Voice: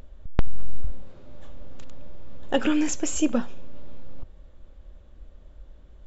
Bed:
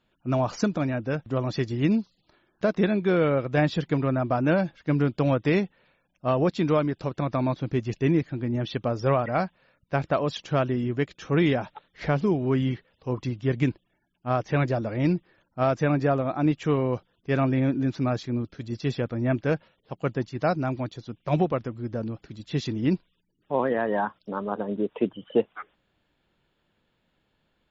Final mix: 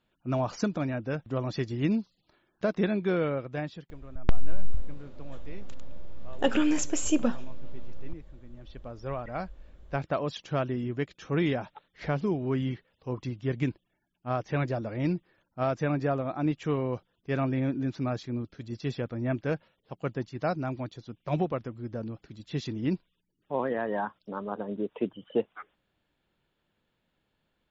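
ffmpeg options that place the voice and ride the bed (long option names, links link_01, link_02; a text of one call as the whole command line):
ffmpeg -i stem1.wav -i stem2.wav -filter_complex "[0:a]adelay=3900,volume=-2dB[link_01];[1:a]volume=14.5dB,afade=type=out:start_time=3.05:duration=0.85:silence=0.105925,afade=type=in:start_time=8.58:duration=1.48:silence=0.11885[link_02];[link_01][link_02]amix=inputs=2:normalize=0" out.wav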